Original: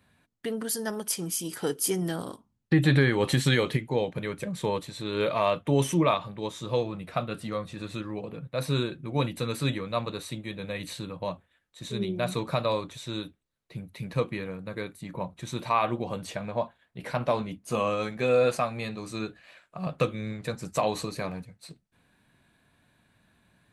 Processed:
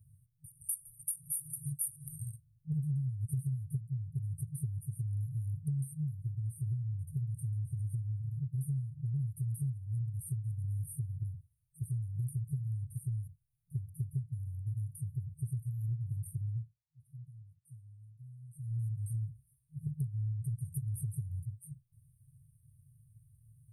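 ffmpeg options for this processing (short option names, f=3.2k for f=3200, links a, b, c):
-filter_complex "[0:a]asplit=3[a][b][c];[a]atrim=end=16.76,asetpts=PTS-STARTPTS,afade=t=out:st=16.39:d=0.37:silence=0.0707946[d];[b]atrim=start=16.76:end=18.54,asetpts=PTS-STARTPTS,volume=-23dB[e];[c]atrim=start=18.54,asetpts=PTS-STARTPTS,afade=t=in:d=0.37:silence=0.0707946[f];[d][e][f]concat=n=3:v=0:a=1,afftfilt=real='re*(1-between(b*sr/4096,160,8500))':imag='im*(1-between(b*sr/4096,160,8500))':win_size=4096:overlap=0.75,equalizer=f=110:w=2:g=9.5,acompressor=threshold=-36dB:ratio=8,volume=3.5dB"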